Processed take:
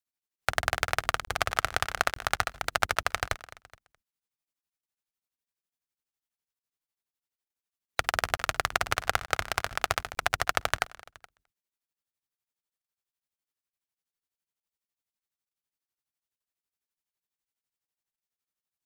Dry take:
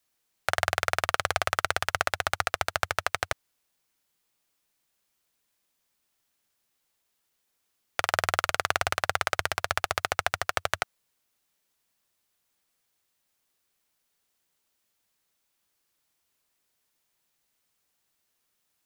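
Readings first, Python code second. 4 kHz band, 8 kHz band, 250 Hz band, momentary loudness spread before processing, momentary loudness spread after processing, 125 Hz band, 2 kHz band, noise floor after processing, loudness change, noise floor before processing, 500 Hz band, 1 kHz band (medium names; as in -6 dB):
-1.0 dB, -1.0 dB, +1.0 dB, 5 LU, 4 LU, 0.0 dB, -1.0 dB, under -85 dBFS, -1.0 dB, -77 dBFS, -2.5 dB, -1.0 dB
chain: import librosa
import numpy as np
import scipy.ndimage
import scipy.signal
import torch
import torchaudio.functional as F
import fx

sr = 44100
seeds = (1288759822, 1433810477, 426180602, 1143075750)

p1 = fx.octave_divider(x, sr, octaves=1, level_db=-4.0)
p2 = fx.peak_eq(p1, sr, hz=580.0, db=-3.5, octaves=0.3)
p3 = fx.noise_reduce_blind(p2, sr, reduce_db=16)
p4 = p3 + fx.echo_feedback(p3, sr, ms=211, feedback_pct=36, wet_db=-16.0, dry=0)
p5 = fx.buffer_crackle(p4, sr, first_s=0.36, period_s=0.89, block=1024, kind='zero')
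p6 = p5 * np.abs(np.cos(np.pi * 12.0 * np.arange(len(p5)) / sr))
y = F.gain(torch.from_numpy(p6), 2.0).numpy()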